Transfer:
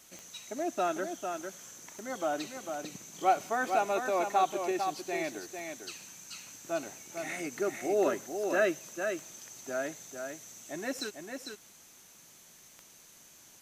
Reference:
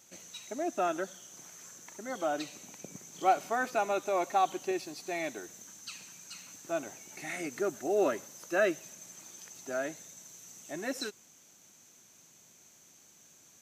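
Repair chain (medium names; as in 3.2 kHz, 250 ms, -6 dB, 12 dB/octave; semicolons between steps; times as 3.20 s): de-click; noise reduction 6 dB, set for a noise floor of -56 dBFS; inverse comb 450 ms -6 dB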